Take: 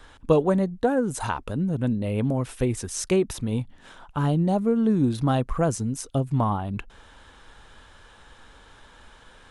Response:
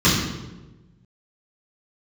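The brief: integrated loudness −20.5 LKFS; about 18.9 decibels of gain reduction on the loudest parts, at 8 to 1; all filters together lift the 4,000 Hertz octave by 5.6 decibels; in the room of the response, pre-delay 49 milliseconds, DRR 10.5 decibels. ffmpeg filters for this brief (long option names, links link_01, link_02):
-filter_complex "[0:a]equalizer=frequency=4000:width_type=o:gain=7.5,acompressor=threshold=-34dB:ratio=8,asplit=2[link_01][link_02];[1:a]atrim=start_sample=2205,adelay=49[link_03];[link_02][link_03]afir=irnorm=-1:irlink=0,volume=-31.5dB[link_04];[link_01][link_04]amix=inputs=2:normalize=0,volume=15dB"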